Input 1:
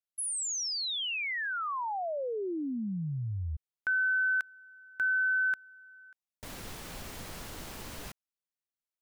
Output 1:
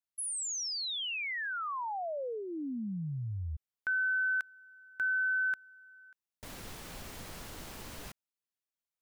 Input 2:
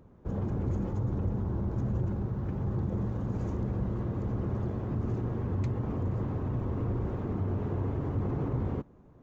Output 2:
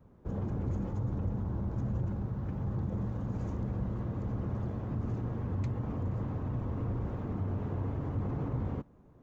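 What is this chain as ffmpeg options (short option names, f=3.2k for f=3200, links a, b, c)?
-af "adynamicequalizer=threshold=0.00224:dfrequency=380:dqfactor=4.5:tfrequency=380:tqfactor=4.5:attack=5:release=100:ratio=0.375:range=3:mode=cutabove:tftype=bell,volume=-2.5dB"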